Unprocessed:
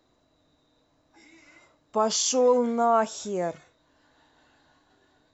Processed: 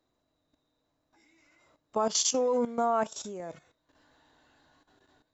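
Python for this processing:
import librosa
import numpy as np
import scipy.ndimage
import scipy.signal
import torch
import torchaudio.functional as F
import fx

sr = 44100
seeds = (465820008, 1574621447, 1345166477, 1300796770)

y = fx.level_steps(x, sr, step_db=13)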